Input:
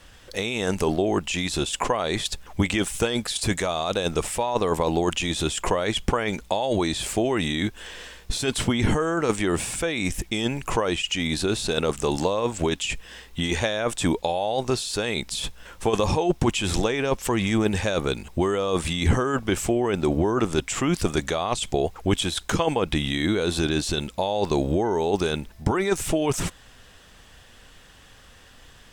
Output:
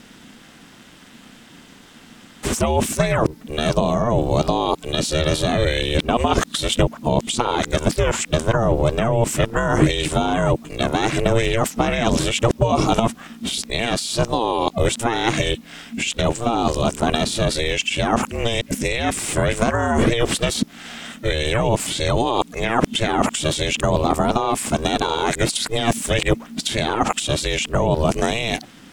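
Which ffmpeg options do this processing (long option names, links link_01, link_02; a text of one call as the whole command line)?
ffmpeg -i in.wav -af "areverse,aeval=exprs='val(0)*sin(2*PI*230*n/s)':channel_layout=same,volume=7.5dB" out.wav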